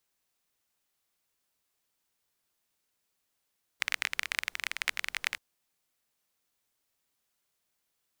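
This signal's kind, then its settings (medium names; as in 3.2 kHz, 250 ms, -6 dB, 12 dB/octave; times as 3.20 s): rain from filtered ticks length 1.58 s, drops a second 22, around 2.1 kHz, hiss -28 dB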